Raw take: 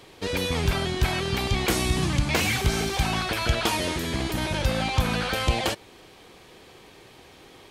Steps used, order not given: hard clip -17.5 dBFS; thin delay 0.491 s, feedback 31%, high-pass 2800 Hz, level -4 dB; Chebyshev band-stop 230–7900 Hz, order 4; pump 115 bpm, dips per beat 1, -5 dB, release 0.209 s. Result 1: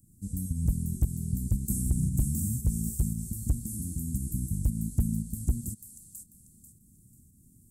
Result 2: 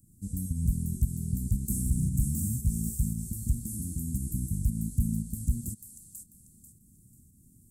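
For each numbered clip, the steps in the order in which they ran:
thin delay > pump > Chebyshev band-stop > hard clip; thin delay > pump > hard clip > Chebyshev band-stop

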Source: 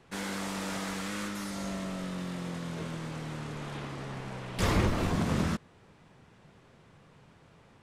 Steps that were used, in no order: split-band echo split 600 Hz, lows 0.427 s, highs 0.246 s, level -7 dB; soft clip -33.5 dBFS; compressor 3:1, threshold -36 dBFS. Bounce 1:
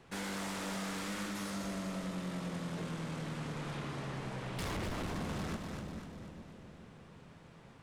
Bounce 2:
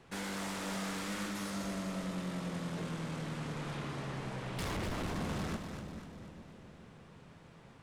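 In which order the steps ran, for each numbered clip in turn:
soft clip > split-band echo > compressor; soft clip > compressor > split-band echo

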